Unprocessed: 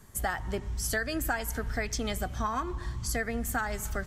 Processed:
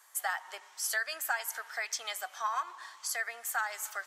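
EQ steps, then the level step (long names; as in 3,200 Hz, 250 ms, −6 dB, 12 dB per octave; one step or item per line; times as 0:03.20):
high-pass filter 780 Hz 24 dB per octave
0.0 dB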